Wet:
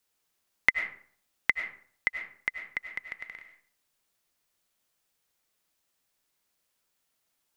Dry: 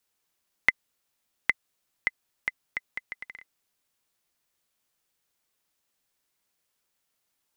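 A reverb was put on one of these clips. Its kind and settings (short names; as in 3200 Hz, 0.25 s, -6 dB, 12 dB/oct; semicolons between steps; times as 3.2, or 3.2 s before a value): digital reverb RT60 0.53 s, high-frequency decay 0.6×, pre-delay 60 ms, DRR 7 dB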